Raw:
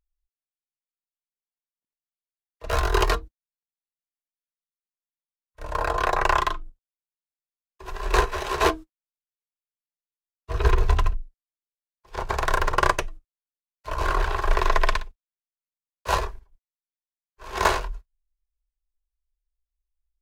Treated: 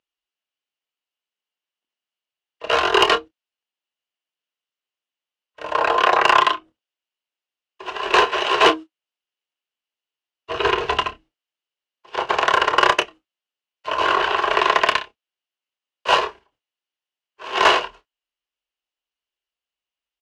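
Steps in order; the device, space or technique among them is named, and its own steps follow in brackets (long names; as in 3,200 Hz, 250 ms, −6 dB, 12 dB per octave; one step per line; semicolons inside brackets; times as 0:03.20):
intercom (band-pass filter 310–4,700 Hz; parametric band 2,900 Hz +11.5 dB 0.26 octaves; soft clipping −12.5 dBFS, distortion −16 dB; double-tracking delay 28 ms −11 dB)
level +8 dB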